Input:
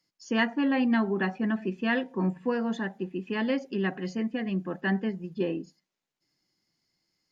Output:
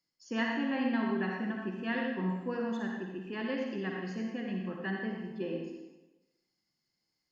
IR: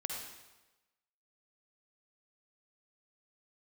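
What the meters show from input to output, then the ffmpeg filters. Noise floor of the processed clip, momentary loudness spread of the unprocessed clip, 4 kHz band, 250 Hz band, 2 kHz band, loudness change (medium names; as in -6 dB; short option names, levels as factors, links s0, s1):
-83 dBFS, 7 LU, -5.5 dB, -6.0 dB, -5.5 dB, -5.5 dB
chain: -filter_complex "[1:a]atrim=start_sample=2205[s0];[0:a][s0]afir=irnorm=-1:irlink=0,volume=0.473"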